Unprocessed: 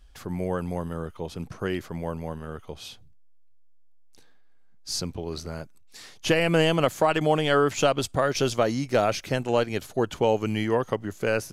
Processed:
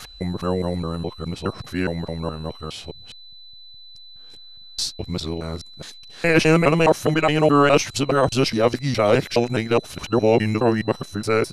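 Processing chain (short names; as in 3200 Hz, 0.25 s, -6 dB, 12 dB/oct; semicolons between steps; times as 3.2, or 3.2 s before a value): local time reversal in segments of 0.208 s; formant shift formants -2 st; whine 4000 Hz -48 dBFS; gain +5.5 dB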